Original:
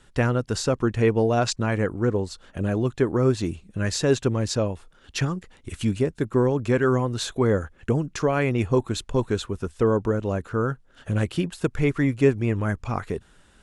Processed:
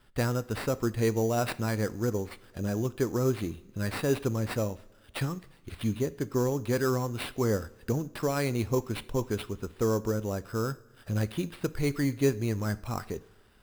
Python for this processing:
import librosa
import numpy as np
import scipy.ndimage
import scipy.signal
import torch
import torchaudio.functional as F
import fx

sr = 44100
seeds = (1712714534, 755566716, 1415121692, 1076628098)

y = fx.sample_hold(x, sr, seeds[0], rate_hz=6500.0, jitter_pct=0)
y = fx.rev_double_slope(y, sr, seeds[1], early_s=0.49, late_s=2.2, knee_db=-17, drr_db=14.5)
y = y * librosa.db_to_amplitude(-6.5)